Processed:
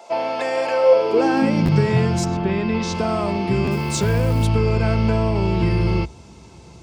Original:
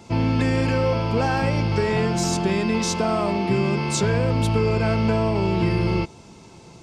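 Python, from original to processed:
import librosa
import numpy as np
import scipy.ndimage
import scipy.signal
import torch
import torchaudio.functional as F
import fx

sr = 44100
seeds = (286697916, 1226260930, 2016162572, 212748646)

y = fx.lowpass(x, sr, hz=fx.line((2.24, 2100.0), (2.93, 4800.0)), slope=12, at=(2.24, 2.93), fade=0.02)
y = fx.quant_companded(y, sr, bits=6, at=(3.71, 4.45))
y = fx.filter_sweep_highpass(y, sr, from_hz=640.0, to_hz=63.0, start_s=0.82, end_s=2.33, q=5.2)
y = fx.buffer_glitch(y, sr, at_s=(1.65, 3.64), block=512, repeats=2)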